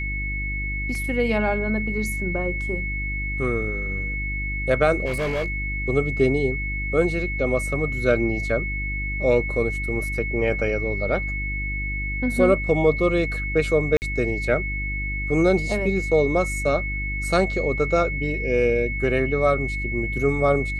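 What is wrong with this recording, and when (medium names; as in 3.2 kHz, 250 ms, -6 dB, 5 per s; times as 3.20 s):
hum 50 Hz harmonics 7 -29 dBFS
whine 2.2 kHz -28 dBFS
0.95 s: dropout 2.3 ms
5.05–5.60 s: clipped -21 dBFS
13.97–14.02 s: dropout 49 ms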